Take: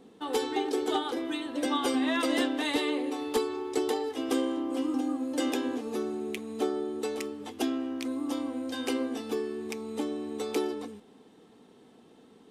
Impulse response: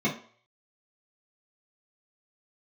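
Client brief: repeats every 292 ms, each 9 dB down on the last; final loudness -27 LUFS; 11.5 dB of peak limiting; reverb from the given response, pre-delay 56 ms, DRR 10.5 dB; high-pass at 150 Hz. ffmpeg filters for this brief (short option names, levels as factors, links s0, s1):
-filter_complex "[0:a]highpass=150,alimiter=level_in=1.5:limit=0.0631:level=0:latency=1,volume=0.668,aecho=1:1:292|584|876|1168:0.355|0.124|0.0435|0.0152,asplit=2[s0][s1];[1:a]atrim=start_sample=2205,adelay=56[s2];[s1][s2]afir=irnorm=-1:irlink=0,volume=0.0794[s3];[s0][s3]amix=inputs=2:normalize=0,volume=2.24"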